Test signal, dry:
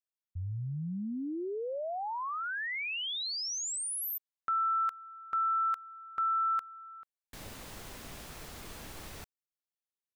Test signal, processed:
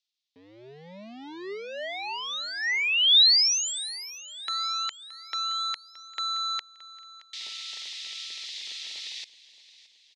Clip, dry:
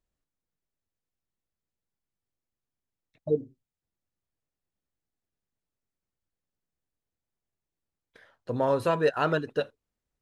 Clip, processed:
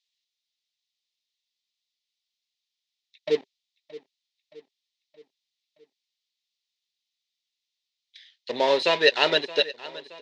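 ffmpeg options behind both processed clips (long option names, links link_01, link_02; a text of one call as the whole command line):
ffmpeg -i in.wav -filter_complex "[0:a]acrossover=split=2400[link_01][link_02];[link_01]aeval=exprs='sgn(val(0))*max(abs(val(0))-0.00891,0)':channel_layout=same[link_03];[link_03][link_02]amix=inputs=2:normalize=0,aexciter=amount=10.3:drive=2.4:freq=2000,highpass=frequency=190:width=0.5412,highpass=frequency=190:width=1.3066,equalizer=frequency=400:width_type=q:width=4:gain=9,equalizer=frequency=600:width_type=q:width=4:gain=8,equalizer=frequency=900:width_type=q:width=4:gain=9,equalizer=frequency=1900:width_type=q:width=4:gain=7,equalizer=frequency=3700:width_type=q:width=4:gain=5,lowpass=frequency=5000:width=0.5412,lowpass=frequency=5000:width=1.3066,aecho=1:1:622|1244|1866|2488:0.126|0.0667|0.0354|0.0187,volume=-3dB" out.wav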